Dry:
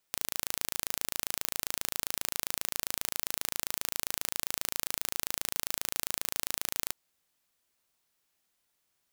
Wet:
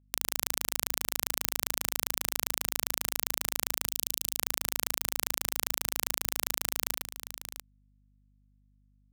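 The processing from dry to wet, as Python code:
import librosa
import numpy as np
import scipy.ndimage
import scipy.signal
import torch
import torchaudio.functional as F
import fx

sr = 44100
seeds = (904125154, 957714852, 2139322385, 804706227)

p1 = x + fx.echo_multitap(x, sr, ms=(105, 109, 691), db=(-18.0, -16.0, -19.5), dry=0)
p2 = fx.over_compress(p1, sr, threshold_db=-38.0, ratio=-0.5)
p3 = fx.spec_erase(p2, sr, start_s=3.86, length_s=0.51, low_hz=450.0, high_hz=2600.0)
p4 = np.sign(p3) * np.maximum(np.abs(p3) - 10.0 ** (-48.5 / 20.0), 0.0)
p5 = fx.add_hum(p4, sr, base_hz=50, snr_db=31)
y = p5 * 10.0 ** (7.0 / 20.0)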